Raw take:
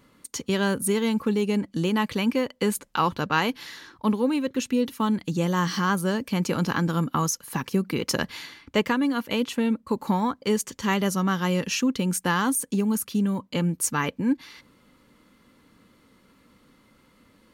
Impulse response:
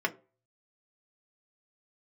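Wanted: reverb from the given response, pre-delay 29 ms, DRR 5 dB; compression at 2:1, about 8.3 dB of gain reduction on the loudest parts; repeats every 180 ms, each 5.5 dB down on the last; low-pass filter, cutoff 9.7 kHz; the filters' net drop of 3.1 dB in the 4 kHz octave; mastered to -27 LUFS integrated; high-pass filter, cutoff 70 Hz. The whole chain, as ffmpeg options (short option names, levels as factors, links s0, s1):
-filter_complex "[0:a]highpass=70,lowpass=9700,equalizer=f=4000:t=o:g=-4.5,acompressor=threshold=0.02:ratio=2,aecho=1:1:180|360|540|720|900|1080|1260:0.531|0.281|0.149|0.079|0.0419|0.0222|0.0118,asplit=2[s0][s1];[1:a]atrim=start_sample=2205,adelay=29[s2];[s1][s2]afir=irnorm=-1:irlink=0,volume=0.2[s3];[s0][s3]amix=inputs=2:normalize=0,volume=1.58"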